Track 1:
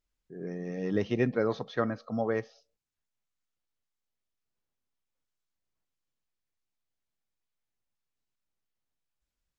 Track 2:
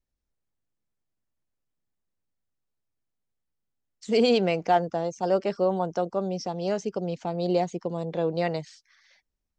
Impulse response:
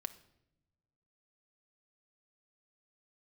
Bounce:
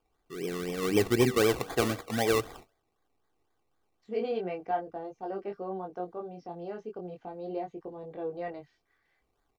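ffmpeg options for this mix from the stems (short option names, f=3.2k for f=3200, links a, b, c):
-filter_complex "[0:a]highshelf=f=3.7k:t=q:w=1.5:g=10,bandreject=f=95.71:t=h:w=4,bandreject=f=191.42:t=h:w=4,bandreject=f=287.13:t=h:w=4,bandreject=f=382.84:t=h:w=4,bandreject=f=478.55:t=h:w=4,bandreject=f=574.26:t=h:w=4,bandreject=f=669.97:t=h:w=4,bandreject=f=765.68:t=h:w=4,bandreject=f=861.39:t=h:w=4,bandreject=f=957.1:t=h:w=4,bandreject=f=1.05281k:t=h:w=4,bandreject=f=1.14852k:t=h:w=4,bandreject=f=1.24423k:t=h:w=4,bandreject=f=1.33994k:t=h:w=4,bandreject=f=1.43565k:t=h:w=4,bandreject=f=1.53136k:t=h:w=4,bandreject=f=1.62707k:t=h:w=4,bandreject=f=1.72278k:t=h:w=4,bandreject=f=1.81849k:t=h:w=4,bandreject=f=1.9142k:t=h:w=4,bandreject=f=2.00991k:t=h:w=4,bandreject=f=2.10562k:t=h:w=4,bandreject=f=2.20133k:t=h:w=4,bandreject=f=2.29704k:t=h:w=4,bandreject=f=2.39275k:t=h:w=4,bandreject=f=2.48846k:t=h:w=4,bandreject=f=2.58417k:t=h:w=4,bandreject=f=2.67988k:t=h:w=4,bandreject=f=2.77559k:t=h:w=4,bandreject=f=2.8713k:t=h:w=4,bandreject=f=2.96701k:t=h:w=4,bandreject=f=3.06272k:t=h:w=4,bandreject=f=3.15843k:t=h:w=4,bandreject=f=3.25414k:t=h:w=4,bandreject=f=3.34985k:t=h:w=4,bandreject=f=3.44556k:t=h:w=4,bandreject=f=3.54127k:t=h:w=4,acrusher=samples=22:mix=1:aa=0.000001:lfo=1:lforange=13.2:lforate=3.9,volume=3dB[a];[1:a]lowpass=2k,flanger=delay=20:depth=3.3:speed=0.38,volume=-7.5dB[b];[a][b]amix=inputs=2:normalize=0,aecho=1:1:2.6:0.41"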